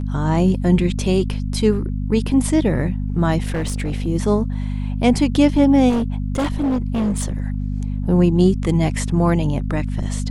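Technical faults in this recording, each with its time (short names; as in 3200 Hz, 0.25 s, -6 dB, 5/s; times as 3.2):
hum 50 Hz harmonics 5 -23 dBFS
3.42–4.07 clipped -18 dBFS
5.89–7.48 clipped -16 dBFS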